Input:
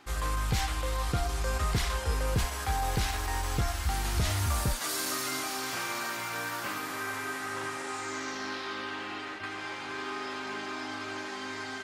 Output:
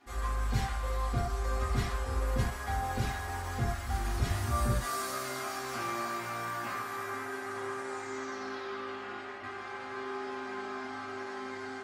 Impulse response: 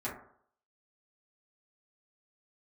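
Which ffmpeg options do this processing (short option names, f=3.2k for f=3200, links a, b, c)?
-filter_complex "[0:a]asettb=1/sr,asplit=3[a][b][c];[a]atrim=end=4.324[d];[b]atrim=start=4.32:end=7.13,asetpts=PTS-STARTPTS,afade=t=in:d=0.004:c=qsin,afade=t=out:st=2.806:d=0.004:c=qsin,asplit=2[e][f];[f]adelay=17,volume=-5dB[g];[e][g]amix=inputs=2:normalize=0,atrim=end_sample=123921[h];[c]atrim=start=7.126[i];[d][h]acrossfade=d=0.004:c1=hsin:c2=qsin[j];[j][i]acrossfade=d=0.004:c1=qsin:c2=hsin[k];[1:a]atrim=start_sample=2205,atrim=end_sample=6174,asetrate=42777,aresample=44100[l];[k][l]afir=irnorm=-1:irlink=0,volume=-6.5dB"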